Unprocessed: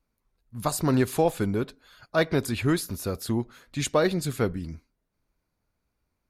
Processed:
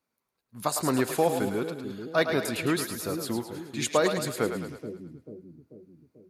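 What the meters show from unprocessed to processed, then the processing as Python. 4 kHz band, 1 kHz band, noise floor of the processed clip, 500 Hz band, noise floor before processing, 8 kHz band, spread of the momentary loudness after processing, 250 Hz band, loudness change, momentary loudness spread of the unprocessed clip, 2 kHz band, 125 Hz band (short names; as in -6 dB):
+1.0 dB, +0.5 dB, -83 dBFS, -0.5 dB, -79 dBFS, +1.0 dB, 15 LU, -2.5 dB, -1.5 dB, 12 LU, +1.0 dB, -7.0 dB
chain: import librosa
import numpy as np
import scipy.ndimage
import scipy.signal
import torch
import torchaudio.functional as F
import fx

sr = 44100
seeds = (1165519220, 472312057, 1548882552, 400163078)

y = scipy.signal.sosfilt(scipy.signal.butter(2, 140.0, 'highpass', fs=sr, output='sos'), x)
y = fx.low_shelf(y, sr, hz=260.0, db=-6.5)
y = fx.echo_split(y, sr, split_hz=410.0, low_ms=440, high_ms=107, feedback_pct=52, wet_db=-7.0)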